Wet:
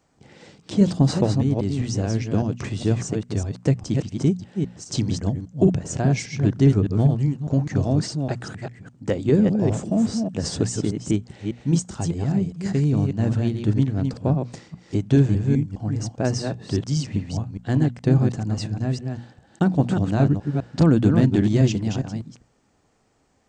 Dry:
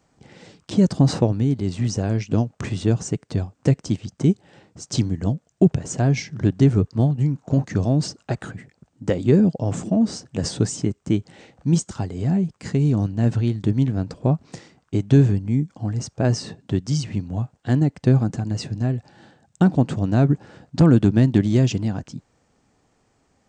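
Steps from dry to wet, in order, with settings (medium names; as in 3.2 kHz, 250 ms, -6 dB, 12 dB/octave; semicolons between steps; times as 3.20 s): chunks repeated in reverse 202 ms, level -5 dB; hum notches 60/120/180/240 Hz; trim -1.5 dB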